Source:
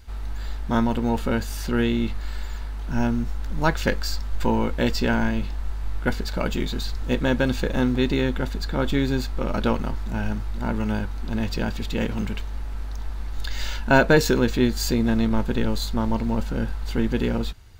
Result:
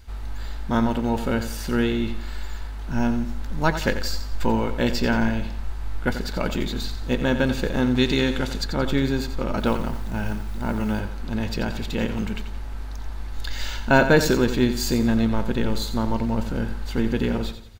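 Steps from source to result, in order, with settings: 7.96–8.64 bell 5800 Hz +8 dB 2.5 oct; 9.58–11 modulation noise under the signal 30 dB; feedback echo 88 ms, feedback 39%, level -10.5 dB

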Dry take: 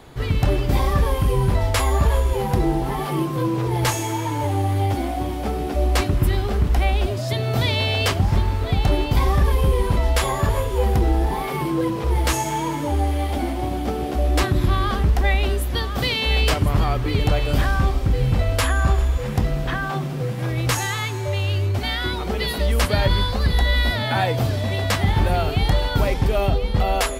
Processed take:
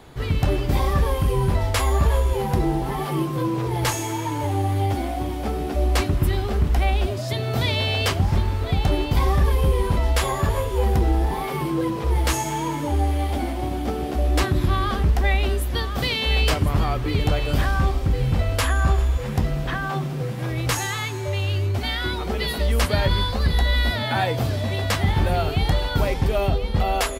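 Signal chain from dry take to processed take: doubler 13 ms -14 dB; gain -1.5 dB

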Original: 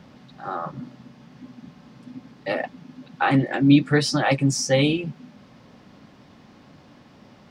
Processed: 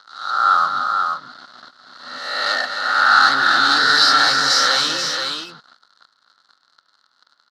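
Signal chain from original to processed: spectral swells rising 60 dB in 1.14 s; bell 2300 Hz +9.5 dB 1.3 oct; sample leveller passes 5; double band-pass 2400 Hz, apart 1.6 oct; on a send: tapped delay 0.254/0.483 s -8.5/-5 dB

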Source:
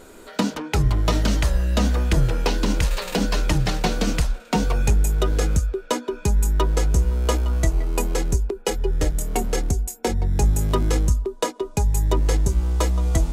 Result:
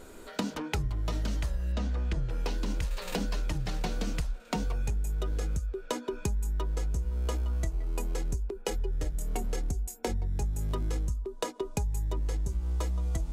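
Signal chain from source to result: low shelf 110 Hz +5.5 dB; compressor 6:1, threshold -23 dBFS, peak gain reduction 13 dB; 1.72–2.3 air absorption 72 m; gain -5 dB

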